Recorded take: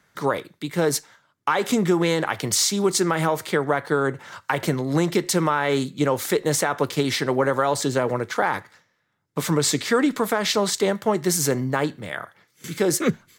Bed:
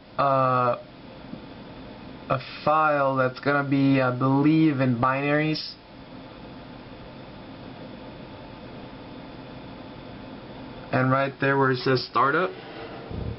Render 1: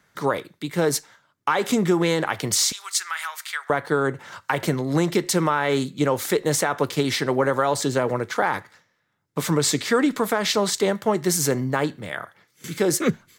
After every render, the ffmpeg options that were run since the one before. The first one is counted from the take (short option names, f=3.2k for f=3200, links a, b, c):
-filter_complex "[0:a]asettb=1/sr,asplit=3[a][b][c];[a]atrim=end=2.724[d];[b]atrim=start=2.72:end=3.7,asetpts=PTS-STARTPTS,afade=t=in:d=0.004:c=qsin,afade=t=out:st=0.976:d=0.004:c=qsin,highpass=f=1.3k:w=0.5412,highpass=f=1.3k:w=1.3066[e];[c]atrim=start=3.696[f];[d][e]acrossfade=d=0.004:c1=hsin:c2=qsin[g];[g][f]acrossfade=d=0.004:c1=qsin:c2=hsin"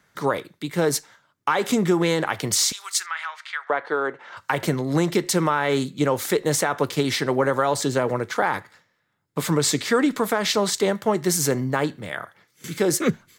-filter_complex "[0:a]asettb=1/sr,asplit=3[a][b][c];[a]atrim=end=3.064[d];[b]atrim=start=3.06:end=4.37,asetpts=PTS-STARTPTS,afade=t=in:d=0.004:c=qsin,afade=t=out:st=1.306:d=0.004:c=qsin,highpass=420,lowpass=3.3k[e];[c]atrim=start=4.366[f];[d][e]acrossfade=d=0.004:c1=hsin:c2=qsin[g];[g][f]acrossfade=d=0.004:c1=qsin:c2=hsin,asettb=1/sr,asplit=3[h][i][j];[h]atrim=end=8.394[k];[i]atrim=start=8.39:end=9.52,asetpts=PTS-STARTPTS,afade=t=in:d=0.004:c=qsin,afade=t=out:st=1.126:d=0.004:c=qsin,bandreject=f=5.9k:w=12[l];[j]atrim=start=9.516[m];[k][l]acrossfade=d=0.004:c1=hsin:c2=qsin[n];[n][m]acrossfade=d=0.004:c1=qsin:c2=hsin"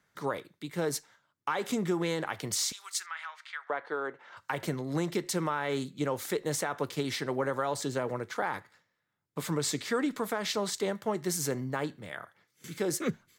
-af "volume=-10dB"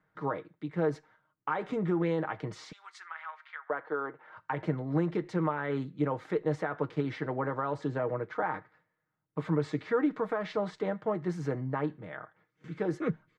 -af "lowpass=1.6k,aecho=1:1:6.4:0.51"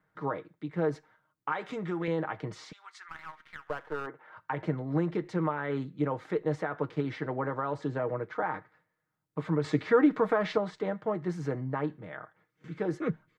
-filter_complex "[0:a]asettb=1/sr,asplit=3[a][b][c];[a]atrim=end=1.524[d];[b]atrim=start=1.52:end=2.08,asetpts=PTS-STARTPTS,afade=t=in:d=0.004:c=qsin,afade=t=out:st=0.556:d=0.004:c=qsin,tiltshelf=f=1.2k:g=-5.5[e];[c]atrim=start=2.076[f];[d][e]acrossfade=d=0.004:c1=hsin:c2=qsin[g];[g][f]acrossfade=d=0.004:c1=qsin:c2=hsin,asplit=3[h][i][j];[h]afade=t=out:st=3.08:d=0.02[k];[i]aeval=exprs='if(lt(val(0),0),0.447*val(0),val(0))':c=same,afade=t=in:st=3.08:d=0.02,afade=t=out:st=4.06:d=0.02[l];[j]afade=t=in:st=4.06:d=0.02[m];[k][l][m]amix=inputs=3:normalize=0,asettb=1/sr,asplit=3[n][o][p];[n]atrim=end=9.644[q];[o]atrim=start=9.64:end=10.58,asetpts=PTS-STARTPTS,afade=t=in:d=0.004:c=qsin,afade=t=out:st=0.936:d=0.004:c=qsin,acontrast=37[r];[p]atrim=start=10.576[s];[q][r]acrossfade=d=0.004:c1=hsin:c2=qsin[t];[t][s]acrossfade=d=0.004:c1=qsin:c2=hsin"